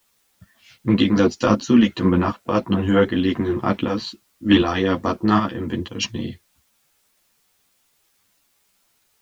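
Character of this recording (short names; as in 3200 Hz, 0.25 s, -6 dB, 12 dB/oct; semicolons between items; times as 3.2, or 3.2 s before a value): tremolo saw up 1.3 Hz, depth 55%; a quantiser's noise floor 12-bit, dither triangular; a shimmering, thickened sound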